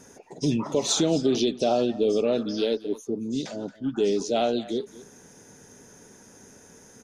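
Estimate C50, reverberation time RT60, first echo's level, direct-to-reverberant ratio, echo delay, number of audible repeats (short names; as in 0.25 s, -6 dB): none, none, -19.0 dB, none, 0.226 s, 1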